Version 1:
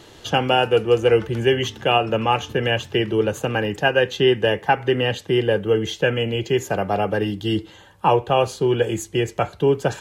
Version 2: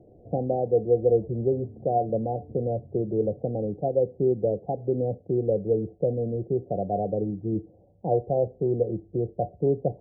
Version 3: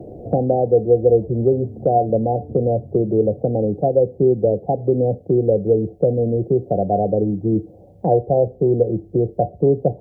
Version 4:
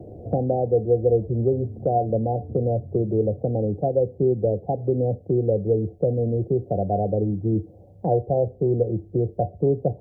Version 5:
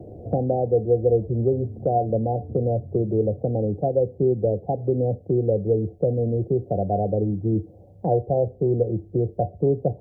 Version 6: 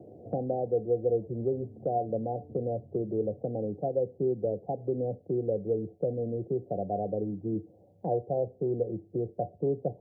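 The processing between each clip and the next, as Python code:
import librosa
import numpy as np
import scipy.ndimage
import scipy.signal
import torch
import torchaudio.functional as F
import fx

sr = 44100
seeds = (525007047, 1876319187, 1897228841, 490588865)

y1 = scipy.signal.sosfilt(scipy.signal.cheby1(6, 3, 740.0, 'lowpass', fs=sr, output='sos'), x)
y1 = y1 * 10.0 ** (-3.5 / 20.0)
y2 = fx.band_squash(y1, sr, depth_pct=40)
y2 = y2 * 10.0 ** (8.0 / 20.0)
y3 = fx.peak_eq(y2, sr, hz=90.0, db=7.5, octaves=0.83)
y3 = y3 * 10.0 ** (-5.5 / 20.0)
y4 = y3
y5 = scipy.signal.sosfilt(scipy.signal.butter(2, 150.0, 'highpass', fs=sr, output='sos'), y4)
y5 = y5 * 10.0 ** (-7.5 / 20.0)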